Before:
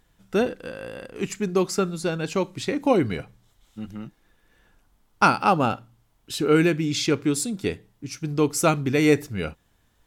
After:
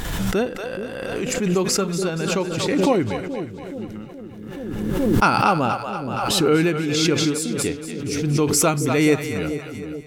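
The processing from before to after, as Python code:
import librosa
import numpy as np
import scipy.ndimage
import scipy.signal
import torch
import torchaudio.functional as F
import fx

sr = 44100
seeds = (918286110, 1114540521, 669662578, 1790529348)

y = fx.echo_split(x, sr, split_hz=500.0, low_ms=425, high_ms=236, feedback_pct=52, wet_db=-8.5)
y = fx.pre_swell(y, sr, db_per_s=27.0)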